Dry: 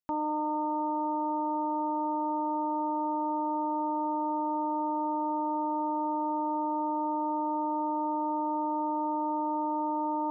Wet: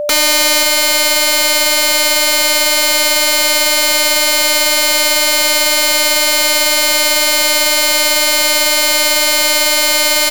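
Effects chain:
high-pass filter 220 Hz 24 dB per octave
wrap-around overflow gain 33.5 dB
steady tone 590 Hz −47 dBFS
single-tap delay 531 ms −12.5 dB
boost into a limiter +36 dB
level −5 dB

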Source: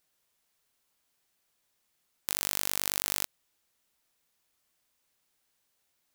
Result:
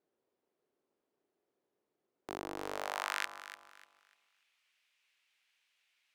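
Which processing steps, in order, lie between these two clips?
band-pass filter sweep 380 Hz → 2,500 Hz, 0:02.57–0:03.41
delay that swaps between a low-pass and a high-pass 148 ms, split 1,000 Hz, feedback 53%, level −7.5 dB
highs frequency-modulated by the lows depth 0.45 ms
level +10 dB

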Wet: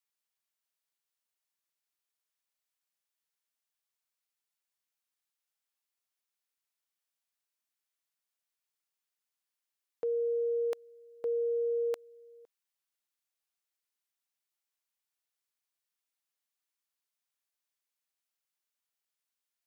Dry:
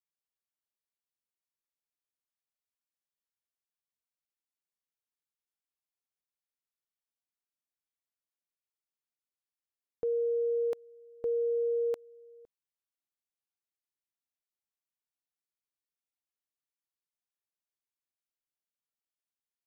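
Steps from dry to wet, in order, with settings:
high-pass filter 900 Hz 6 dB per octave
level +5.5 dB

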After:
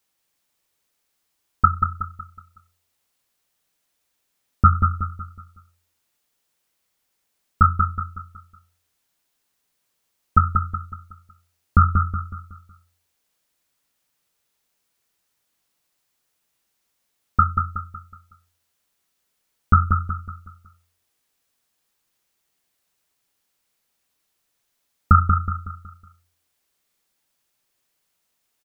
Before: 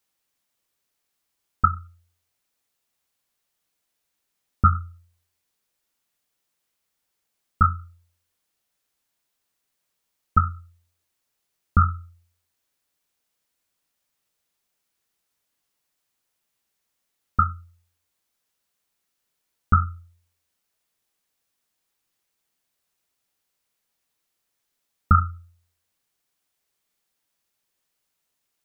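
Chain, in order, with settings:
repeating echo 185 ms, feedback 40%, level −6 dB
level +3 dB

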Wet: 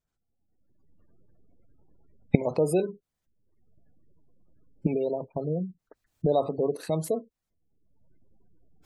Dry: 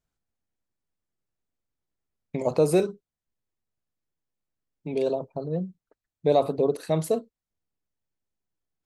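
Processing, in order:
camcorder AGC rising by 32 dB per second
gate on every frequency bin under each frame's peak −30 dB strong
level −3.5 dB

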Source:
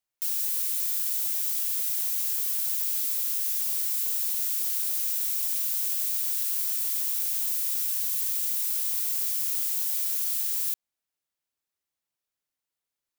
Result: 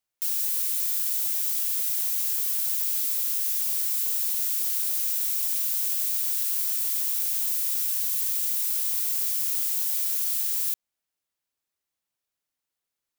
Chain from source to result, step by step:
0:03.55–0:04.11: high-pass filter 600 Hz 24 dB per octave
level +1.5 dB

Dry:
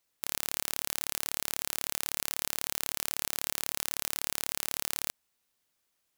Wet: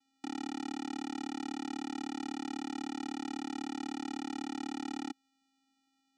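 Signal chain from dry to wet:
parametric band 1,500 Hz −4.5 dB 0.77 octaves
channel vocoder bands 4, square 269 Hz
level +1.5 dB

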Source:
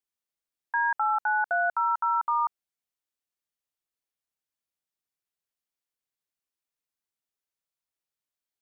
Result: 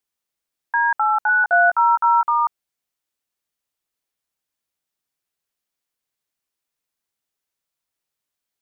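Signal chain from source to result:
0:01.27–0:02.25: double-tracking delay 17 ms −3 dB
level +7 dB

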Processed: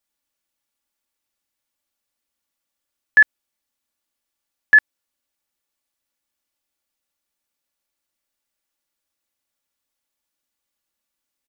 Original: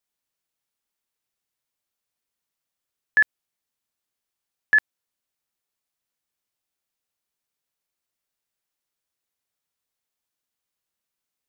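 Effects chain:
comb filter 3.5 ms, depth 49%
level +2.5 dB

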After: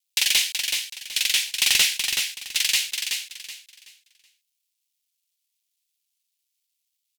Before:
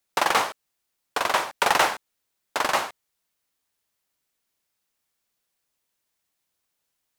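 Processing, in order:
mu-law and A-law mismatch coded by A
inverse Chebyshev high-pass filter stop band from 1,300 Hz, stop band 40 dB
sine wavefolder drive 8 dB, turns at −11.5 dBFS
on a send: repeating echo 376 ms, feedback 28%, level −5.5 dB

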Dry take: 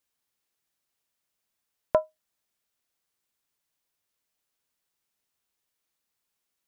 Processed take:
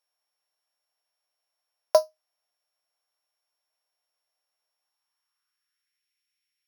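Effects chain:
samples sorted by size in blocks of 8 samples
high-pass filter sweep 670 Hz → 2,200 Hz, 0:04.73–0:06.09
level −2 dB

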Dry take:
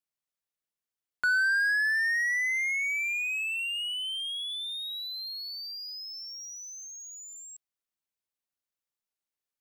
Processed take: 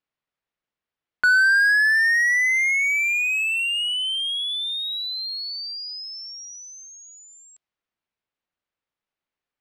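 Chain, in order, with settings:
low-pass that shuts in the quiet parts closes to 2,900 Hz, open at −28.5 dBFS
level +8.5 dB

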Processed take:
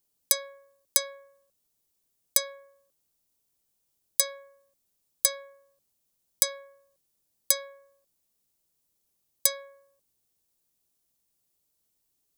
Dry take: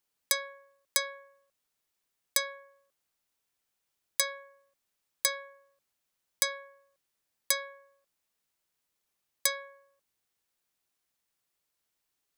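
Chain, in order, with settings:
parametric band 1,700 Hz −14 dB 2.7 octaves
level +8 dB

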